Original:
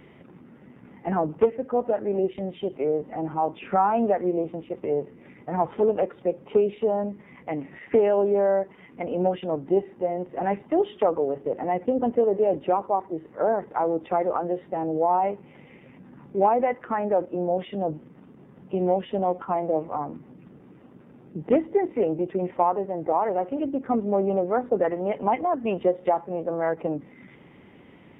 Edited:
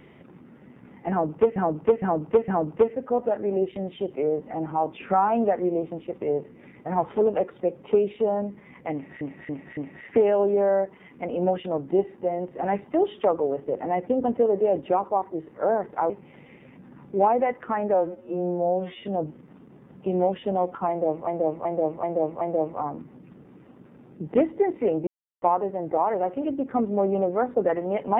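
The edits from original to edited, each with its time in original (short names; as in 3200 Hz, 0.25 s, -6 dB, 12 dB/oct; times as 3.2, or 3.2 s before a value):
1.1–1.56 loop, 4 plays
7.55–7.83 loop, 4 plays
13.88–15.31 cut
17.15–17.69 stretch 2×
19.56–19.94 loop, 5 plays
22.22–22.57 mute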